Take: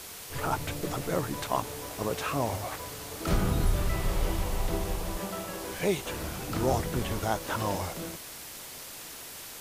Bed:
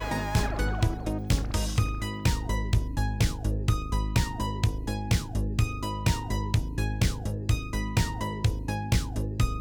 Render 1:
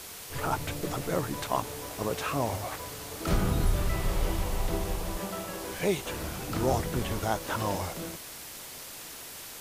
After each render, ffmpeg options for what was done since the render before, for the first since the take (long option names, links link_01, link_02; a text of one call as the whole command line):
ffmpeg -i in.wav -af anull out.wav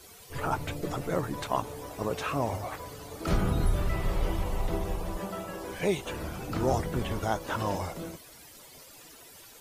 ffmpeg -i in.wav -af "afftdn=noise_reduction=13:noise_floor=-44" out.wav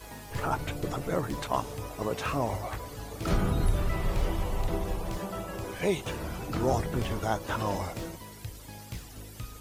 ffmpeg -i in.wav -i bed.wav -filter_complex "[1:a]volume=-15.5dB[link_01];[0:a][link_01]amix=inputs=2:normalize=0" out.wav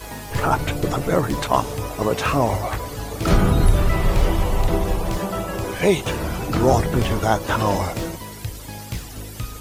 ffmpeg -i in.wav -af "volume=10.5dB" out.wav